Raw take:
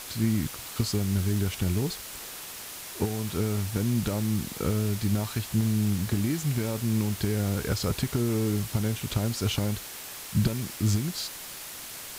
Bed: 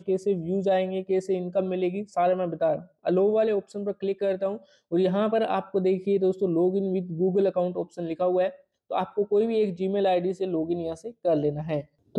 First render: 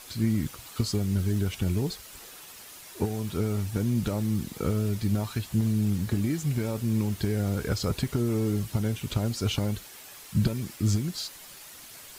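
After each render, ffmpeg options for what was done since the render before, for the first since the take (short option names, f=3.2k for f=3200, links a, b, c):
-af "afftdn=nr=8:nf=-41"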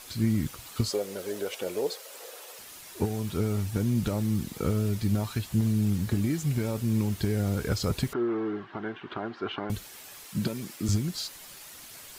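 -filter_complex "[0:a]asettb=1/sr,asplit=3[a][b][c];[a]atrim=end=0.904[d];[b]atrim=start=0.9:end=2.59,asetpts=PTS-STARTPTS,afade=t=in:d=0.004:c=qsin,afade=t=out:st=1.686:d=0.004:c=qsin,highpass=f=510:t=q:w=5[e];[c]atrim=start=2.586[f];[d][e]acrossfade=d=0.004:c1=hsin:c2=qsin[g];[g][f]acrossfade=d=0.004:c1=qsin:c2=hsin,asettb=1/sr,asplit=3[h][i][j];[h]atrim=end=8.134[k];[i]atrim=start=8.13:end=9.7,asetpts=PTS-STARTPTS,afade=t=in:d=0.004:c=qsin,afade=t=out:st=1.566:d=0.004:c=qsin,highpass=350,equalizer=f=360:t=q:w=4:g=8,equalizer=f=520:t=q:w=4:g=-8,equalizer=f=740:t=q:w=4:g=5,equalizer=f=1.1k:t=q:w=4:g=7,equalizer=f=1.6k:t=q:w=4:g=8,equalizer=f=2.4k:t=q:w=4:g=-6,lowpass=f=2.8k:w=0.5412,lowpass=f=2.8k:w=1.3066[l];[j]atrim=start=9.696[m];[k][l]acrossfade=d=0.004:c1=hsin:c2=qsin[n];[n][m]acrossfade=d=0.004:c1=qsin:c2=hsin,asettb=1/sr,asplit=3[o][p][q];[o]atrim=end=10.244[r];[p]atrim=start=10.24:end=10.89,asetpts=PTS-STARTPTS,afade=t=in:d=0.004:c=qsin,afade=t=out:st=0.646:d=0.004:c=qsin,highpass=190[s];[q]atrim=start=10.886[t];[r][s]acrossfade=d=0.004:c1=hsin:c2=qsin[u];[u][t]acrossfade=d=0.004:c1=qsin:c2=hsin"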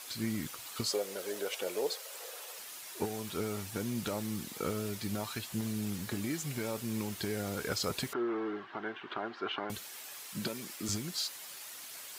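-af "highpass=f=570:p=1"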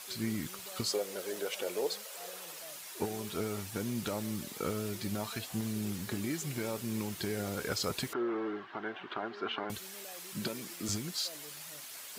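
-filter_complex "[1:a]volume=-29.5dB[a];[0:a][a]amix=inputs=2:normalize=0"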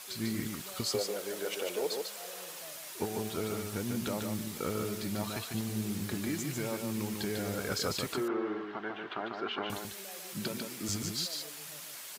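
-af "aecho=1:1:147:0.596"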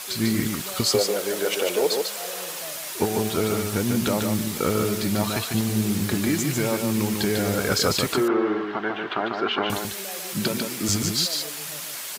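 -af "volume=11.5dB"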